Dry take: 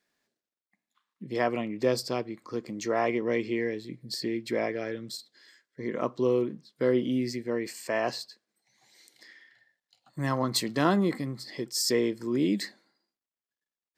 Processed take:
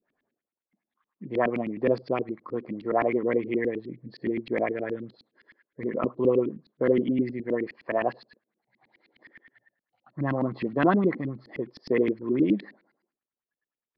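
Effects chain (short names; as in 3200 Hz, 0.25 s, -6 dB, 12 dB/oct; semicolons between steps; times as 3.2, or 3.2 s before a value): downsampling 11025 Hz; LFO low-pass saw up 9.6 Hz 230–2800 Hz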